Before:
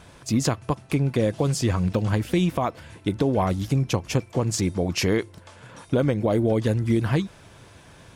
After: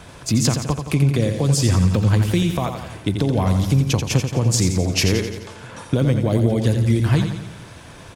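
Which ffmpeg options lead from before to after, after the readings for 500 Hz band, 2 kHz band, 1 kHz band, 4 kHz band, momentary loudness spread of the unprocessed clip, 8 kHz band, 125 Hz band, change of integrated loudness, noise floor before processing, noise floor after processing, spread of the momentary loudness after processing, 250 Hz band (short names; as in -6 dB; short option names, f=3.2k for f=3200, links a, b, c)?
+0.5 dB, +3.5 dB, +0.5 dB, +7.0 dB, 5 LU, +8.0 dB, +7.0 dB, +5.0 dB, -50 dBFS, -41 dBFS, 10 LU, +3.5 dB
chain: -filter_complex "[0:a]acrossover=split=180|3000[a][b][c];[b]acompressor=threshold=-35dB:ratio=2[d];[a][d][c]amix=inputs=3:normalize=0,aecho=1:1:86|172|258|344|430|516|602:0.447|0.246|0.135|0.0743|0.0409|0.0225|0.0124,volume=7dB"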